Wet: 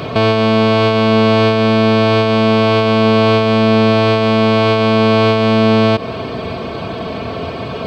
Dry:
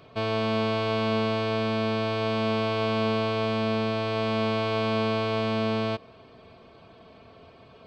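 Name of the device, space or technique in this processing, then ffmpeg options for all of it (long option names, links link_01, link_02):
mastering chain: -af "highpass=48,equalizer=frequency=190:width_type=o:width=2.4:gain=2.5,acompressor=threshold=-30dB:ratio=2,alimiter=level_in=28dB:limit=-1dB:release=50:level=0:latency=1,volume=-1dB"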